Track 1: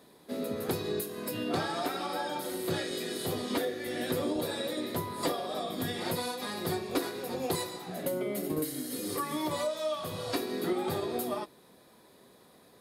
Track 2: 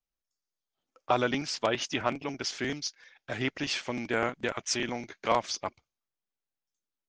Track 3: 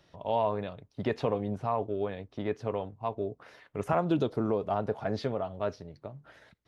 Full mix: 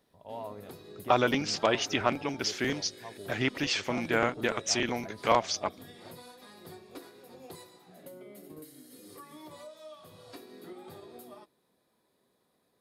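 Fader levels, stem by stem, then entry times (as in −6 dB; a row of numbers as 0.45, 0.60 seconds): −15.5, +2.0, −13.0 decibels; 0.00, 0.00, 0.00 seconds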